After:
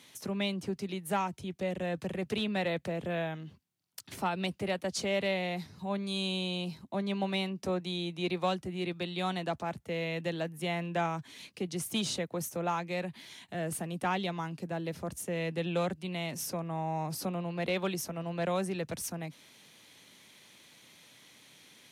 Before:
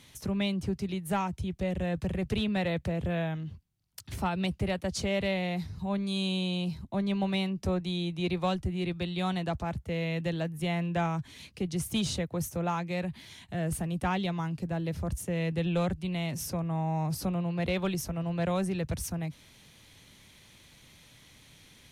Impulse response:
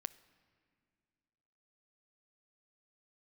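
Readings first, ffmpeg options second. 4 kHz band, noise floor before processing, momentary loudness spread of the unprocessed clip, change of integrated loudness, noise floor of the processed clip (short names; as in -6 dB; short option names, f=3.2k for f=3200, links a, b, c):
0.0 dB, -57 dBFS, 5 LU, -2.5 dB, -59 dBFS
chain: -af "highpass=230"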